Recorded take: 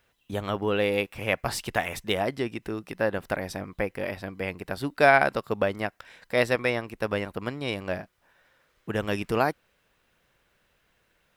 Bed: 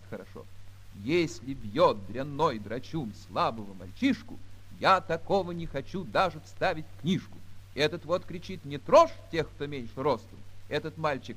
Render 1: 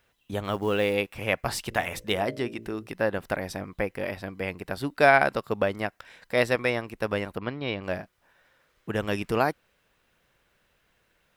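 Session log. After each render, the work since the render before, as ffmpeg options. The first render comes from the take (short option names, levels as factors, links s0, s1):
-filter_complex "[0:a]asettb=1/sr,asplit=3[s0][s1][s2];[s0]atrim=end=0.444[s3];[s1]atrim=start=0.44:end=0.93,asetpts=PTS-STARTPTS,afade=t=in:d=0.004:c=qsin,afade=t=out:st=0.486:d=0.004:c=qsin,acrusher=bits=7:mode=log:mix=0:aa=0.000001[s4];[s2]atrim=start=0.926[s5];[s3][s4]acrossfade=d=0.004:c1=hsin:c2=qsin[s6];[s6][s5]acrossfade=d=0.004:c1=qsin:c2=hsin,asplit=3[s7][s8][s9];[s7]afade=t=out:st=1.7:d=0.02[s10];[s8]bandreject=f=56.38:t=h:w=4,bandreject=f=112.76:t=h:w=4,bandreject=f=169.14:t=h:w=4,bandreject=f=225.52:t=h:w=4,bandreject=f=281.9:t=h:w=4,bandreject=f=338.28:t=h:w=4,bandreject=f=394.66:t=h:w=4,bandreject=f=451.04:t=h:w=4,bandreject=f=507.42:t=h:w=4,bandreject=f=563.8:t=h:w=4,bandreject=f=620.18:t=h:w=4,afade=t=in:st=1.7:d=0.02,afade=t=out:st=2.86:d=0.02[s11];[s9]afade=t=in:st=2.86:d=0.02[s12];[s10][s11][s12]amix=inputs=3:normalize=0,asplit=3[s13][s14][s15];[s13]afade=t=out:st=7.38:d=0.02[s16];[s14]lowpass=f=4200:w=0.5412,lowpass=f=4200:w=1.3066,afade=t=in:st=7.38:d=0.02,afade=t=out:st=7.82:d=0.02[s17];[s15]afade=t=in:st=7.82:d=0.02[s18];[s16][s17][s18]amix=inputs=3:normalize=0"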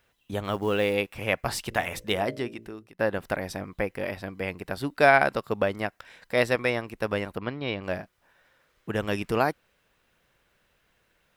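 -filter_complex "[0:a]asplit=2[s0][s1];[s0]atrim=end=2.99,asetpts=PTS-STARTPTS,afade=t=out:st=2.31:d=0.68:silence=0.0794328[s2];[s1]atrim=start=2.99,asetpts=PTS-STARTPTS,afade=t=in:d=0.004:c=hsin:silence=0.0794328[s3];[s2][s3]concat=n=2:v=0:a=1"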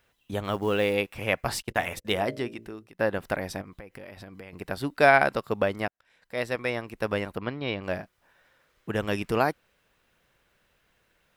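-filter_complex "[0:a]asettb=1/sr,asplit=3[s0][s1][s2];[s0]atrim=end=1.624[s3];[s1]atrim=start=1.62:end=2.05,asetpts=PTS-STARTPTS,afade=t=in:d=0.004:c=qsin,afade=t=out:st=0.426:d=0.004:c=qsin,agate=range=0.0447:threshold=0.0141:ratio=16:release=100:detection=peak[s4];[s2]atrim=start=2.046[s5];[s3][s4]acrossfade=d=0.004:c1=hsin:c2=qsin[s6];[s6][s5]acrossfade=d=0.004:c1=qsin:c2=hsin,asettb=1/sr,asplit=3[s7][s8][s9];[s7]atrim=end=3.614[s10];[s8]atrim=start=3.61:end=4.53,asetpts=PTS-STARTPTS,afade=t=in:d=0.004:c=qsin,afade=t=out:st=0.916:d=0.004:c=qsin,acompressor=threshold=0.0112:ratio=12:attack=3.2:release=140:knee=1:detection=peak[s11];[s9]atrim=start=4.526[s12];[s10][s11]acrossfade=d=0.004:c1=hsin:c2=qsin[s13];[s13][s12]acrossfade=d=0.004:c1=qsin:c2=hsin,asplit=2[s14][s15];[s14]atrim=end=5.88,asetpts=PTS-STARTPTS,afade=t=out:st=5.876:d=0.004:c=hsin[s16];[s15]atrim=start=5.88,asetpts=PTS-STARTPTS,afade=t=in:d=1.18[s17];[s16][s17]concat=n=2:v=0:a=1"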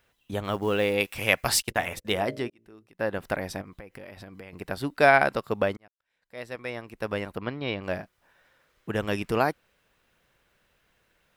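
-filter_complex "[0:a]asettb=1/sr,asplit=3[s0][s1][s2];[s0]atrim=end=1.004[s3];[s1]atrim=start=1:end=1.71,asetpts=PTS-STARTPTS,afade=t=in:d=0.004:c=qsin,afade=t=out:st=0.706:d=0.004:c=qsin,highshelf=f=2300:g=11[s4];[s2]atrim=start=1.706[s5];[s3][s4]acrossfade=d=0.004:c1=hsin:c2=qsin[s6];[s6][s5]acrossfade=d=0.004:c1=qsin:c2=hsin,asplit=3[s7][s8][s9];[s7]atrim=end=2.5,asetpts=PTS-STARTPTS,afade=t=out:st=2.496:d=0.004:c=hsin[s10];[s8]atrim=start=2.5:end=5.77,asetpts=PTS-STARTPTS,afade=t=in:d=0.76,afade=t=out:st=3.266:d=0.004:c=hsin[s11];[s9]atrim=start=5.77,asetpts=PTS-STARTPTS,afade=t=in:d=1.76[s12];[s10][s11][s12]concat=n=3:v=0:a=1"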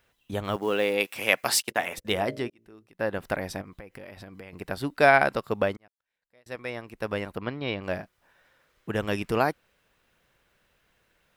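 -filter_complex "[0:a]asettb=1/sr,asplit=3[s0][s1][s2];[s0]atrim=end=0.564[s3];[s1]atrim=start=0.56:end=1.98,asetpts=PTS-STARTPTS,afade=t=in:d=0.004:c=qsin,afade=t=out:st=1.416:d=0.004:c=qsin,highpass=220[s4];[s2]atrim=start=1.976[s5];[s3][s4]acrossfade=d=0.004:c1=hsin:c2=qsin[s6];[s6][s5]acrossfade=d=0.004:c1=qsin:c2=hsin,asplit=2[s7][s8];[s7]atrim=end=6.46,asetpts=PTS-STARTPTS,afade=t=out:st=5.65:d=0.81[s9];[s8]atrim=start=6.46,asetpts=PTS-STARTPTS,afade=t=in:d=0.004:c=hsin[s10];[s9][s10]concat=n=2:v=0:a=1"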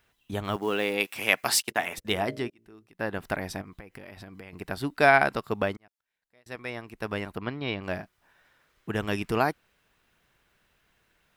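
-af "equalizer=f=530:t=o:w=0.26:g=-7"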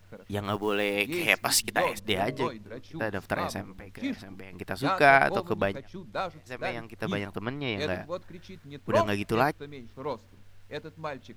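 -filter_complex "[1:a]volume=0.473[s0];[0:a][s0]amix=inputs=2:normalize=0"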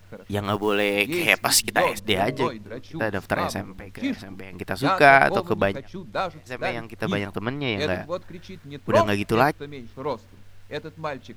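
-af "volume=1.88,alimiter=limit=0.891:level=0:latency=1"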